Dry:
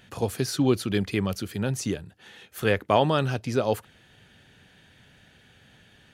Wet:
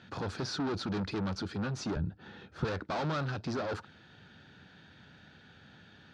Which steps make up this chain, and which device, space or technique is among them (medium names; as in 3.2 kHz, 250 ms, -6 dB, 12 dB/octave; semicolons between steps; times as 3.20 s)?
guitar amplifier (valve stage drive 34 dB, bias 0.55; tone controls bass +7 dB, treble +11 dB; cabinet simulation 100–4300 Hz, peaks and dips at 120 Hz -6 dB, 320 Hz +3 dB, 870 Hz +4 dB, 1.4 kHz +8 dB, 2.1 kHz -4 dB, 3 kHz -6 dB); 1.96–2.65 s: tilt EQ -3 dB/octave